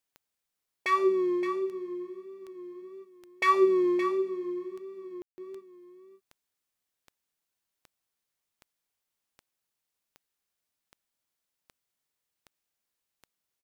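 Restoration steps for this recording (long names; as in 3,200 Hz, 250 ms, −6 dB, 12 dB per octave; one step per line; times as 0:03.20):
click removal
ambience match 0:05.22–0:05.38
echo removal 569 ms −10.5 dB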